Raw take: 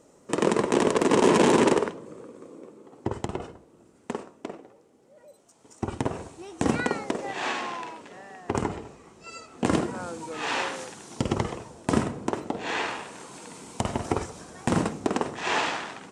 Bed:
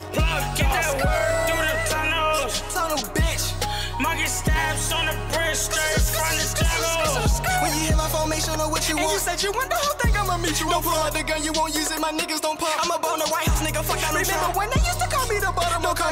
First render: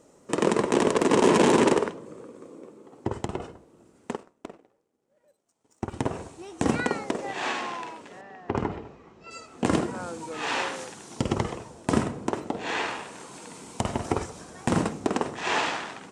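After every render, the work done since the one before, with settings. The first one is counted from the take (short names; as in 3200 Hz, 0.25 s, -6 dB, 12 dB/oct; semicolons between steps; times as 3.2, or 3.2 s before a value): 4.15–5.94 power-law curve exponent 1.4; 8.21–9.31 air absorption 170 m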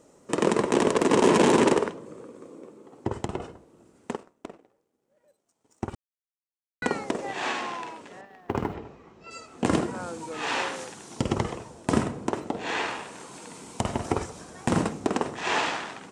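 5.95–6.82 mute; 8.25–8.75 G.711 law mismatch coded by A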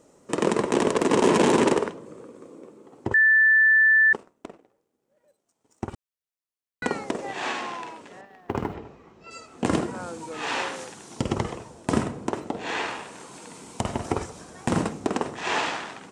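3.14–4.13 bleep 1760 Hz -14 dBFS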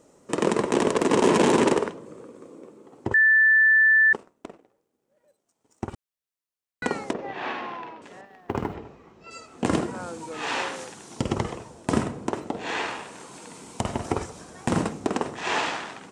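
7.13–8.02 air absorption 260 m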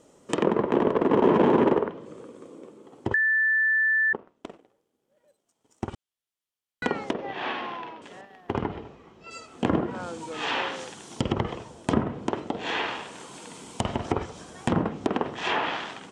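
treble ducked by the level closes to 1400 Hz, closed at -20 dBFS; bell 3200 Hz +6.5 dB 0.31 oct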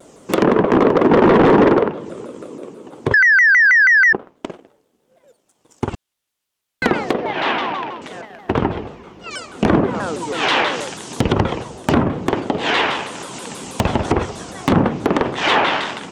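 sine folder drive 8 dB, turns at -6.5 dBFS; shaped vibrato saw down 6.2 Hz, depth 250 cents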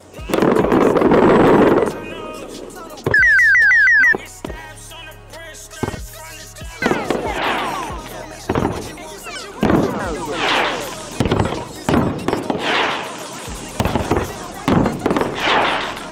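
add bed -11.5 dB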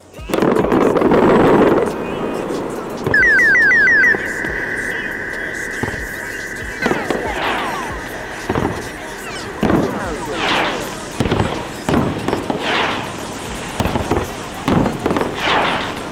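diffused feedback echo 0.917 s, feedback 75%, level -12 dB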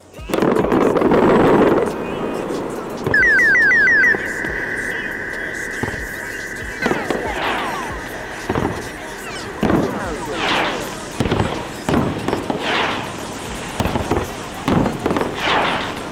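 gain -1.5 dB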